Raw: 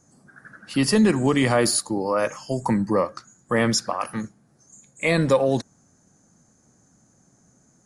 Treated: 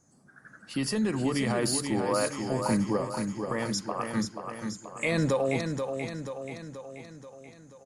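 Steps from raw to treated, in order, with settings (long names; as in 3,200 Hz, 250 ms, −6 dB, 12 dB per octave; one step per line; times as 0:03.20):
0:02.97–0:04.15: downward compressor 2.5 to 1, threshold −30 dBFS, peak gain reduction 9.5 dB
brickwall limiter −15 dBFS, peak gain reduction 6.5 dB
speech leveller within 3 dB 2 s
repeating echo 482 ms, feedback 56%, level −6 dB
level −3 dB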